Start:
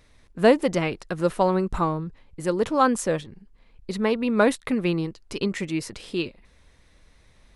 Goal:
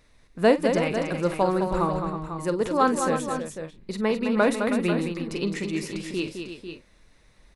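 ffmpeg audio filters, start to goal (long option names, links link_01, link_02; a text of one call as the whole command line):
ffmpeg -i in.wav -filter_complex "[0:a]equalizer=frequency=78:width=1.5:gain=-4.5,bandreject=frequency=3200:width=18,asplit=2[link_01][link_02];[link_02]aecho=0:1:46|211|319|496|527:0.237|0.447|0.299|0.316|0.133[link_03];[link_01][link_03]amix=inputs=2:normalize=0,volume=-2dB" out.wav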